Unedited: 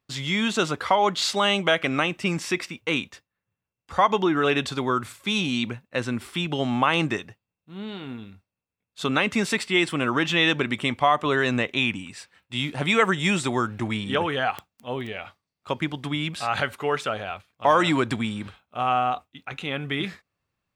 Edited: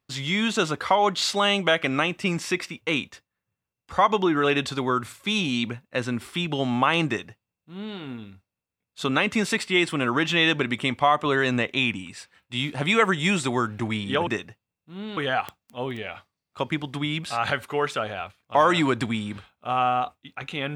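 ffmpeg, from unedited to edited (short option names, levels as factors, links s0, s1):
-filter_complex "[0:a]asplit=3[s0][s1][s2];[s0]atrim=end=14.272[s3];[s1]atrim=start=7.068:end=7.972[s4];[s2]atrim=start=14.268[s5];[s3][s4]acrossfade=d=0.004:c1=hsin:c2=hsin[s6];[s6][s5]acrossfade=d=0.004:c1=hsin:c2=hsin"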